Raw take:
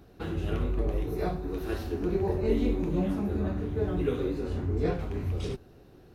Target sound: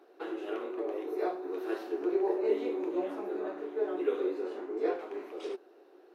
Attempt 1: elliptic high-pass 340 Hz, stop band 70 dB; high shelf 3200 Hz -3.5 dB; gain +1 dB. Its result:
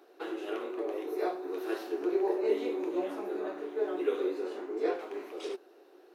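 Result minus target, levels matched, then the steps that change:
8000 Hz band +6.5 dB
change: high shelf 3200 Hz -11.5 dB

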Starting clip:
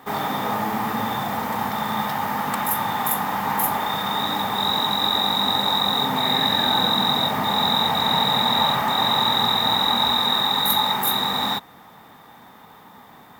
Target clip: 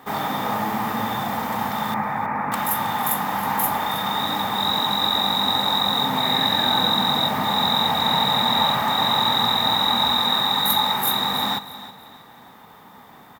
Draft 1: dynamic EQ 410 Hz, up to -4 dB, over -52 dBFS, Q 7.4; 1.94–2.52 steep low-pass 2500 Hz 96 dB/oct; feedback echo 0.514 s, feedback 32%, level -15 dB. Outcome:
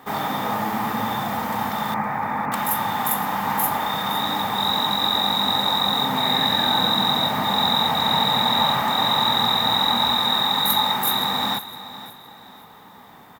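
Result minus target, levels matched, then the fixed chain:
echo 0.195 s late
dynamic EQ 410 Hz, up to -4 dB, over -52 dBFS, Q 7.4; 1.94–2.52 steep low-pass 2500 Hz 96 dB/oct; feedback echo 0.319 s, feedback 32%, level -15 dB

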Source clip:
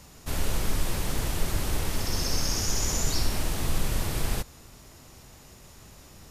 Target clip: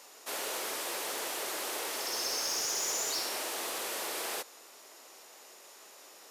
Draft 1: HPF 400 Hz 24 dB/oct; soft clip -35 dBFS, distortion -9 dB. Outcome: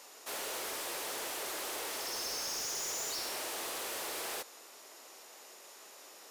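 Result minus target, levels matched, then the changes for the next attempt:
soft clip: distortion +8 dB
change: soft clip -26.5 dBFS, distortion -17 dB

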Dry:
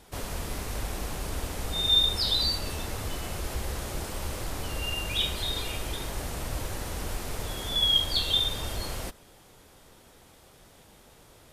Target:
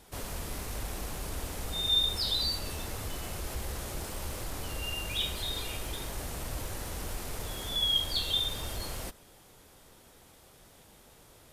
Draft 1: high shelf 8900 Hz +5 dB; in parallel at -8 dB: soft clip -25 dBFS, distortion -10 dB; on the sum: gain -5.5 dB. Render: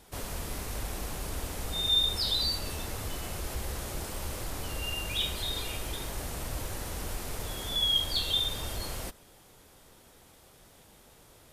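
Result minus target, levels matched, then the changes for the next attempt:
soft clip: distortion -6 dB
change: soft clip -36.5 dBFS, distortion -4 dB

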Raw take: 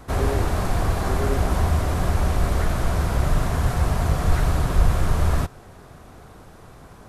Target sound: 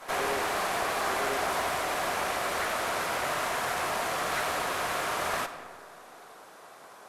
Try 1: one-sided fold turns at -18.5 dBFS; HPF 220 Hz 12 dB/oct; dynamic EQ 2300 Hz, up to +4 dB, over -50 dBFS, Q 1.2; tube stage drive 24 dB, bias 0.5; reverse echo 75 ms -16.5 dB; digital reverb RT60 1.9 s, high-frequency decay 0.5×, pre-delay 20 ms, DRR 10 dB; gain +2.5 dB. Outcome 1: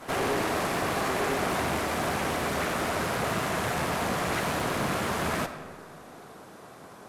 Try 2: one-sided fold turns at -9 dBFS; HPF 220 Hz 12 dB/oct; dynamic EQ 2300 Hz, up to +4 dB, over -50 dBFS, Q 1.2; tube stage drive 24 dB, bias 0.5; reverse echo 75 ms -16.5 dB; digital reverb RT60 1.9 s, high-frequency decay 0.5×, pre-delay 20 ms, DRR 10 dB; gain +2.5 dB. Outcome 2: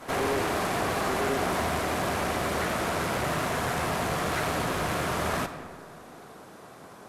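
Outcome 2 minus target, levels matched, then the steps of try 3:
250 Hz band +8.5 dB
one-sided fold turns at -9 dBFS; HPF 570 Hz 12 dB/oct; dynamic EQ 2300 Hz, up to +4 dB, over -50 dBFS, Q 1.2; tube stage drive 24 dB, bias 0.5; reverse echo 75 ms -16.5 dB; digital reverb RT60 1.9 s, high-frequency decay 0.5×, pre-delay 20 ms, DRR 10 dB; gain +2.5 dB

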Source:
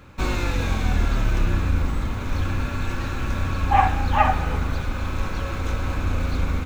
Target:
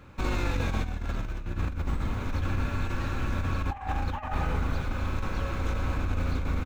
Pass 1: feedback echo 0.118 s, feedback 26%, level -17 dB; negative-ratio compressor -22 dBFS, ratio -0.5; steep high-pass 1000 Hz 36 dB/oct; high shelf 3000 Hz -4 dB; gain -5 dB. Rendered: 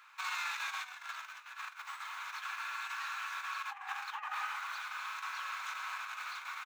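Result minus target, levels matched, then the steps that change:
1000 Hz band +5.0 dB
remove: steep high-pass 1000 Hz 36 dB/oct

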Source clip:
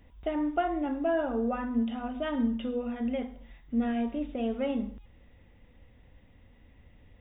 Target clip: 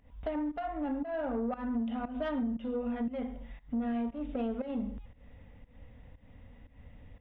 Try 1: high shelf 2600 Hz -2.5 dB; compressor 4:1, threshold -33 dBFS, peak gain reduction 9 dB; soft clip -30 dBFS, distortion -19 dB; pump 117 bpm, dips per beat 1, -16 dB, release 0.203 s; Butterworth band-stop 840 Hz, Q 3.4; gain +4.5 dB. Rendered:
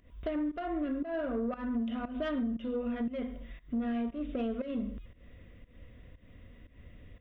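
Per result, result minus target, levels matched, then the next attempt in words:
4000 Hz band +3.5 dB; 1000 Hz band -3.0 dB
high shelf 2600 Hz -9 dB; compressor 4:1, threshold -33 dBFS, peak gain reduction 9 dB; soft clip -30 dBFS, distortion -19 dB; pump 117 bpm, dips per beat 1, -16 dB, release 0.203 s; Butterworth band-stop 840 Hz, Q 3.4; gain +4.5 dB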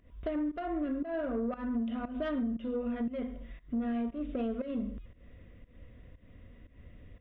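1000 Hz band -3.0 dB
high shelf 2600 Hz -9 dB; compressor 4:1, threshold -33 dBFS, peak gain reduction 9 dB; soft clip -30 dBFS, distortion -19 dB; pump 117 bpm, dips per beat 1, -16 dB, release 0.203 s; Butterworth band-stop 360 Hz, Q 3.4; gain +4.5 dB

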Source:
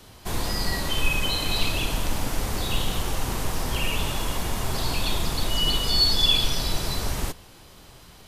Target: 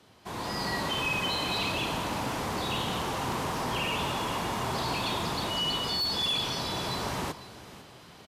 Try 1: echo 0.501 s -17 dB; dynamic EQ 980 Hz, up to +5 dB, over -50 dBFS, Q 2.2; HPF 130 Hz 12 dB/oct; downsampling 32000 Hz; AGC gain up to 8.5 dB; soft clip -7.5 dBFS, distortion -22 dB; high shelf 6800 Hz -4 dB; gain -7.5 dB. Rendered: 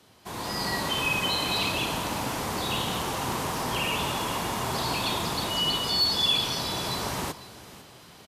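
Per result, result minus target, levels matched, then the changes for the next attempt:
soft clip: distortion -9 dB; 8000 Hz band +2.5 dB
change: soft clip -15 dBFS, distortion -13 dB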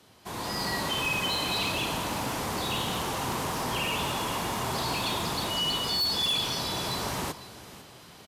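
8000 Hz band +3.5 dB
change: high shelf 6800 Hz -12.5 dB

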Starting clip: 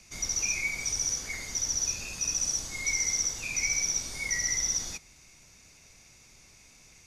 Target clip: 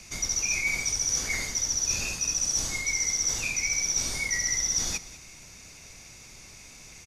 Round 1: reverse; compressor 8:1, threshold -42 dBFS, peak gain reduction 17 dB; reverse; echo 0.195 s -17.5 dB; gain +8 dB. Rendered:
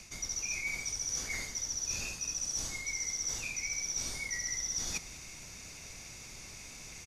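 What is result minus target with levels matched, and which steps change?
compressor: peak gain reduction +9 dB
change: compressor 8:1, threshold -32 dBFS, peak gain reduction 8 dB

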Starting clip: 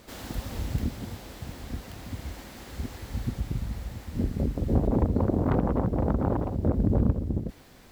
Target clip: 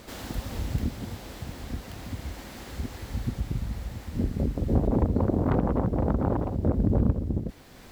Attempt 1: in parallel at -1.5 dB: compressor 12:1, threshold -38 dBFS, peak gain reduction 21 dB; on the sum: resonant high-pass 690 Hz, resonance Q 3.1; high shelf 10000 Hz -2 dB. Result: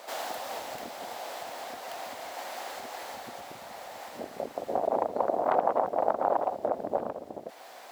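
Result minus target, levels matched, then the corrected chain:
compressor: peak gain reduction -9.5 dB; 500 Hz band +6.0 dB
in parallel at -1.5 dB: compressor 12:1, threshold -48.5 dBFS, peak gain reduction 30.5 dB; on the sum: high shelf 10000 Hz -2 dB

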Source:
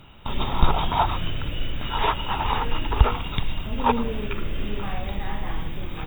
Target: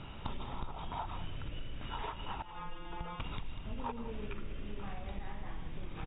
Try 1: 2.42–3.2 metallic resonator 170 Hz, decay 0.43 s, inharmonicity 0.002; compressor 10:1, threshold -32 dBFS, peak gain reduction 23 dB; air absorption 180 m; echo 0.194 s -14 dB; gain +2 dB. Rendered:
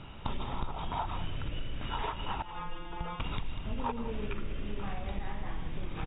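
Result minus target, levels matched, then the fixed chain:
compressor: peak gain reduction -5.5 dB
2.42–3.2 metallic resonator 170 Hz, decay 0.43 s, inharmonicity 0.002; compressor 10:1, threshold -38 dBFS, peak gain reduction 28.5 dB; air absorption 180 m; echo 0.194 s -14 dB; gain +2 dB

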